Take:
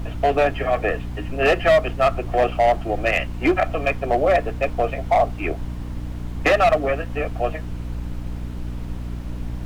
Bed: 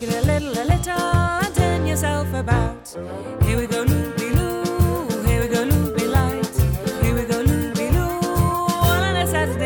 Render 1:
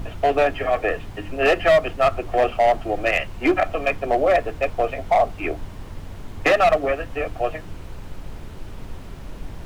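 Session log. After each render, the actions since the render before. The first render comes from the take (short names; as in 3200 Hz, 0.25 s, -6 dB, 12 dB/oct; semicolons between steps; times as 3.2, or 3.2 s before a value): de-hum 60 Hz, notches 5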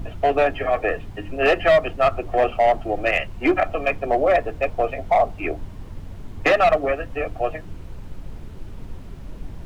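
denoiser 6 dB, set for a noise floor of -37 dBFS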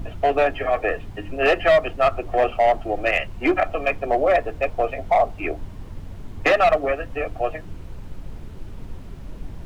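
dynamic EQ 150 Hz, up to -3 dB, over -33 dBFS, Q 0.72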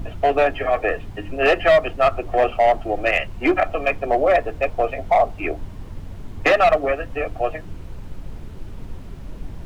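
gain +1.5 dB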